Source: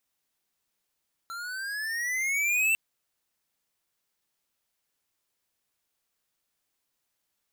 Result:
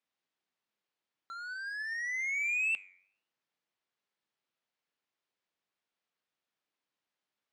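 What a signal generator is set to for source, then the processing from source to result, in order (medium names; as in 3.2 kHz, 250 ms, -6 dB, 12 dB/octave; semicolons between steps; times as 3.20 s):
gliding synth tone square, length 1.45 s, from 1.35 kHz, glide +12 st, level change +14.5 dB, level -23 dB
flange 0.51 Hz, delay 4.1 ms, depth 7.1 ms, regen +90%; band-pass 150–3800 Hz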